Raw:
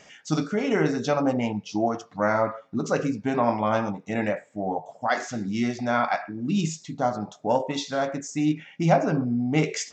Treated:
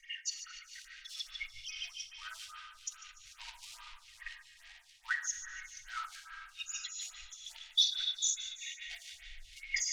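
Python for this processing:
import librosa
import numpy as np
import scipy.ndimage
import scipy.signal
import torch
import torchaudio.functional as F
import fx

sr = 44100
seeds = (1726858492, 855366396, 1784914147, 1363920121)

p1 = fx.envelope_sharpen(x, sr, power=3.0)
p2 = fx.peak_eq(p1, sr, hz=190.0, db=-13.0, octaves=2.9)
p3 = p2 + 0.81 * np.pad(p2, (int(3.2 * sr / 1000.0), 0))[:len(p2)]
p4 = fx.quant_companded(p3, sr, bits=4)
p5 = p3 + (p4 * 10.0 ** (-11.5 / 20.0))
p6 = scipy.signal.sosfilt(scipy.signal.cheby2(4, 80, [180.0, 570.0], 'bandstop', fs=sr, output='sos'), p5)
p7 = 10.0 ** (-16.5 / 20.0) * np.tanh(p6 / 10.0 ** (-16.5 / 20.0))
p8 = fx.air_absorb(p7, sr, metres=70.0)
p9 = p8 + fx.echo_banded(p8, sr, ms=147, feedback_pct=70, hz=2800.0, wet_db=-6.5, dry=0)
p10 = fx.rev_plate(p9, sr, seeds[0], rt60_s=3.6, hf_ratio=0.6, predelay_ms=0, drr_db=5.0)
p11 = fx.stagger_phaser(p10, sr, hz=2.4)
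y = p11 * 10.0 ** (8.0 / 20.0)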